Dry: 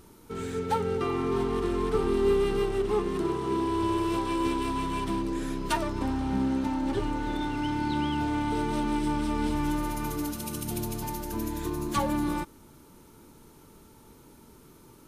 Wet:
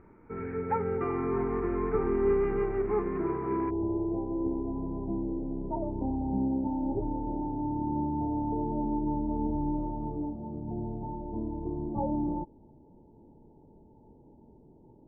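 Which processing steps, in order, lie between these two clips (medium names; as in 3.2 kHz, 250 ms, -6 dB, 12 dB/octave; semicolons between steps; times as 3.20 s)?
Chebyshev low-pass 2.3 kHz, order 6, from 3.69 s 880 Hz; trim -1.5 dB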